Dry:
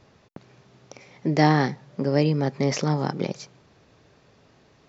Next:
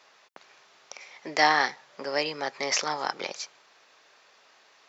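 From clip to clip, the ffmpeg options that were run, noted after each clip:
-af "highpass=960,volume=5dB"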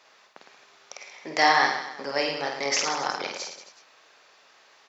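-af "aecho=1:1:50|110|182|268.4|372.1:0.631|0.398|0.251|0.158|0.1"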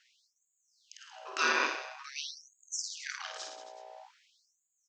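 -af "aeval=exprs='val(0)+0.01*(sin(2*PI*60*n/s)+sin(2*PI*2*60*n/s)/2+sin(2*PI*3*60*n/s)/3+sin(2*PI*4*60*n/s)/4+sin(2*PI*5*60*n/s)/5)':c=same,aeval=exprs='val(0)*sin(2*PI*700*n/s)':c=same,afftfilt=real='re*gte(b*sr/1024,230*pow(6600/230,0.5+0.5*sin(2*PI*0.48*pts/sr)))':imag='im*gte(b*sr/1024,230*pow(6600/230,0.5+0.5*sin(2*PI*0.48*pts/sr)))':win_size=1024:overlap=0.75,volume=-5dB"

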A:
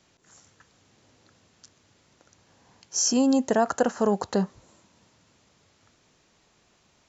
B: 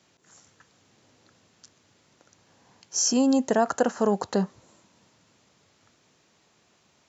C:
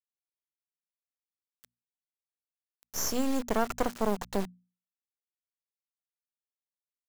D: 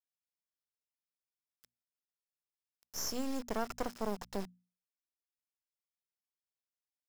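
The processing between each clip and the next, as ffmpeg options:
-af "highpass=97"
-af "acrusher=bits=3:dc=4:mix=0:aa=0.000001,bandreject=f=60:t=h:w=6,bandreject=f=120:t=h:w=6,bandreject=f=180:t=h:w=6,bandreject=f=240:t=h:w=6,volume=-3.5dB"
-af "equalizer=f=5.2k:w=7.8:g=9,volume=-8dB"

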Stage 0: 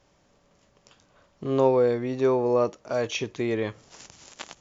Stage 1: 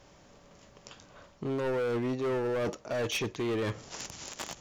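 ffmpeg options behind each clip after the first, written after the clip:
-af "areverse,acompressor=threshold=-32dB:ratio=4,areverse,asoftclip=type=hard:threshold=-34.5dB,volume=6.5dB"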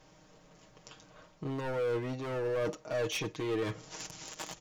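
-af "aecho=1:1:6.4:0.65,volume=-4dB"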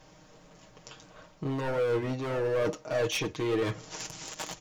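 -af "flanger=delay=1.1:depth=7.5:regen=-69:speed=1.6:shape=sinusoidal,volume=8.5dB"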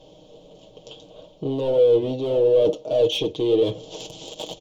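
-filter_complex "[0:a]asplit=2[a][b];[b]volume=31.5dB,asoftclip=hard,volume=-31.5dB,volume=-8dB[c];[a][c]amix=inputs=2:normalize=0,firequalizer=gain_entry='entry(160,0);entry(490,11);entry(1300,-16);entry(1800,-21);entry(3200,10);entry(4900,-6)':delay=0.05:min_phase=1"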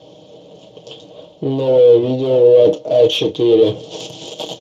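-filter_complex "[0:a]asplit=2[a][b];[b]adelay=31,volume=-12dB[c];[a][c]amix=inputs=2:normalize=0,volume=7dB" -ar 32000 -c:a libspeex -b:a 36k

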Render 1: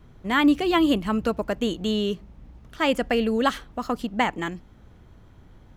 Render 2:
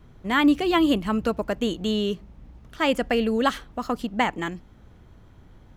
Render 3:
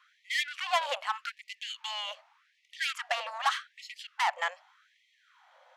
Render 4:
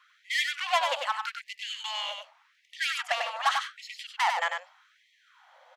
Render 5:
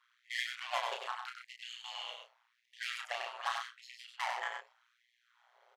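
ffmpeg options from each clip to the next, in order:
-af anull
-af "asoftclip=type=tanh:threshold=-22.5dB,adynamicsmooth=sensitivity=2.5:basefreq=6.2k,afftfilt=real='re*gte(b*sr/1024,480*pow(1900/480,0.5+0.5*sin(2*PI*0.84*pts/sr)))':imag='im*gte(b*sr/1024,480*pow(1900/480,0.5+0.5*sin(2*PI*0.84*pts/sr)))':win_size=1024:overlap=0.75,volume=3.5dB"
-af "aecho=1:1:96:0.562,volume=2dB"
-filter_complex "[0:a]tremolo=f=120:d=0.947,asplit=2[a][b];[b]adelay=32,volume=-4dB[c];[a][c]amix=inputs=2:normalize=0,volume=-7.5dB"

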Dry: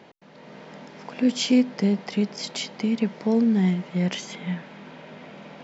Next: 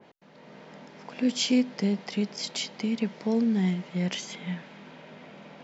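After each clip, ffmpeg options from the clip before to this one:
-af "adynamicequalizer=threshold=0.00631:dfrequency=2200:dqfactor=0.7:tfrequency=2200:tqfactor=0.7:attack=5:release=100:ratio=0.375:range=2:mode=boostabove:tftype=highshelf,volume=-4.5dB"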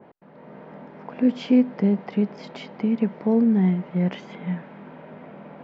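-af "lowpass=1.4k,volume=6dB"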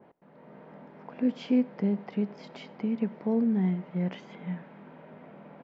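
-filter_complex "[0:a]asplit=2[a][b];[b]adelay=93.29,volume=-23dB,highshelf=f=4k:g=-2.1[c];[a][c]amix=inputs=2:normalize=0,volume=-7dB"

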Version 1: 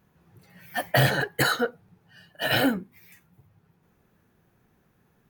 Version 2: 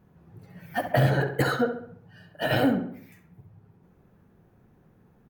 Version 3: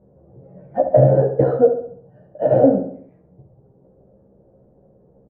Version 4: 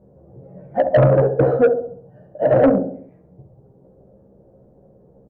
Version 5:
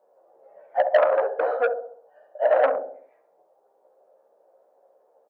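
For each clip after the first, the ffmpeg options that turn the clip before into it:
-filter_complex "[0:a]tiltshelf=f=1.3k:g=6.5,acompressor=threshold=-23dB:ratio=2,asplit=2[a][b];[b]adelay=67,lowpass=f=3k:p=1,volume=-8dB,asplit=2[c][d];[d]adelay=67,lowpass=f=3k:p=1,volume=0.49,asplit=2[e][f];[f]adelay=67,lowpass=f=3k:p=1,volume=0.49,asplit=2[g][h];[h]adelay=67,lowpass=f=3k:p=1,volume=0.49,asplit=2[i][j];[j]adelay=67,lowpass=f=3k:p=1,volume=0.49,asplit=2[k][l];[l]adelay=67,lowpass=f=3k:p=1,volume=0.49[m];[a][c][e][g][i][k][m]amix=inputs=7:normalize=0"
-filter_complex "[0:a]lowpass=f=560:t=q:w=4.9,asplit=2[a][b];[b]adelay=15,volume=-3.5dB[c];[a][c]amix=inputs=2:normalize=0,volume=1.5dB"
-af "asoftclip=type=tanh:threshold=-9.5dB,volume=2.5dB"
-af "highpass=f=640:w=0.5412,highpass=f=640:w=1.3066,volume=1dB"

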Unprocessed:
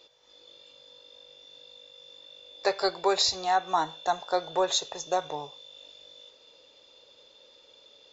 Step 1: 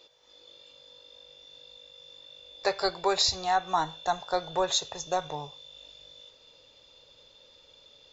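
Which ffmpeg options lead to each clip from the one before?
-af "asubboost=boost=4:cutoff=160"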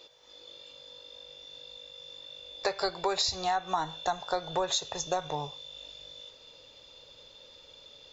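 -af "acompressor=threshold=-30dB:ratio=4,volume=3.5dB"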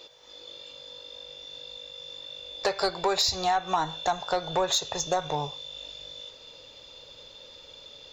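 -af "asoftclip=type=tanh:threshold=-19.5dB,volume=5dB"

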